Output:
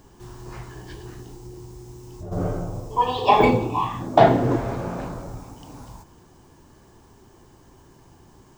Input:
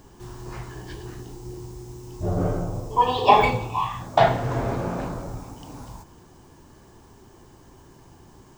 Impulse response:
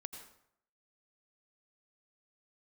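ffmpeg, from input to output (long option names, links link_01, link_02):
-filter_complex "[0:a]asplit=3[link_01][link_02][link_03];[link_01]afade=type=out:start_time=1.36:duration=0.02[link_04];[link_02]acompressor=threshold=-33dB:ratio=5,afade=type=in:start_time=1.36:duration=0.02,afade=type=out:start_time=2.31:duration=0.02[link_05];[link_03]afade=type=in:start_time=2.31:duration=0.02[link_06];[link_04][link_05][link_06]amix=inputs=3:normalize=0,asettb=1/sr,asplit=3[link_07][link_08][link_09];[link_07]atrim=end=3.404[link_10];[link_08]atrim=start=3.4:end=4.56,asetpts=PTS-STARTPTS,afade=type=in:duration=0.004:curve=qsin,afade=type=out:start_time=1.156:duration=0.004:curve=qsin,equalizer=frequency=300:width_type=o:width=1.6:gain=15[link_11];[link_09]atrim=start=4.556[link_12];[link_10][link_11]acrossfade=duration=0.004:curve1=hsin:curve2=qsin[link_13];[link_13][link_12]acrossfade=duration=0.004:curve1=qsin:curve2=hsin,volume=-1.5dB"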